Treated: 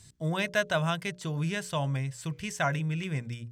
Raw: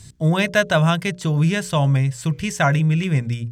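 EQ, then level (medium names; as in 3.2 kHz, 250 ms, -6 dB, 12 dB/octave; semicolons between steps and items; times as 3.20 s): bass shelf 290 Hz -5.5 dB; -9.0 dB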